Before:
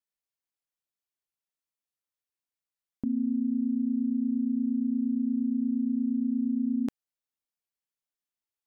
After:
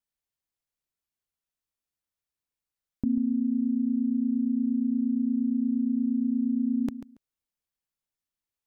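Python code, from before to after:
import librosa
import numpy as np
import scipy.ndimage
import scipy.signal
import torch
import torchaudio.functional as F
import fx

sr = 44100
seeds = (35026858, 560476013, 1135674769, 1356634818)

p1 = fx.low_shelf(x, sr, hz=150.0, db=11.0)
y = p1 + fx.echo_feedback(p1, sr, ms=140, feedback_pct=16, wet_db=-12.5, dry=0)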